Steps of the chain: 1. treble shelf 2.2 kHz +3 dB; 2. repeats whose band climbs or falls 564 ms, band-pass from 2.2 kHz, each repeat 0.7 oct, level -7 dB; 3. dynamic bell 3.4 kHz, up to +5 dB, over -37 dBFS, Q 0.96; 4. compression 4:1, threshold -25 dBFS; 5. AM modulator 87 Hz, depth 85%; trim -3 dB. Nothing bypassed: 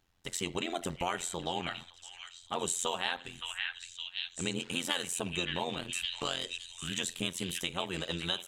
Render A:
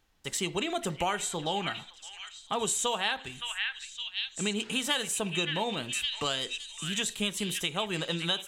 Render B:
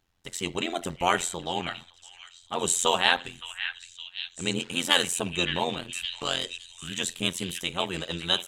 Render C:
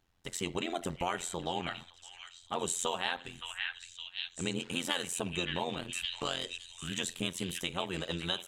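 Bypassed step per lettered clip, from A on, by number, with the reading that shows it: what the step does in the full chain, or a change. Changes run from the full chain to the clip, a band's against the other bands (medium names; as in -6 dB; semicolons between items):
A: 5, crest factor change -2.5 dB; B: 4, momentary loudness spread change +8 LU; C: 1, 8 kHz band -2.0 dB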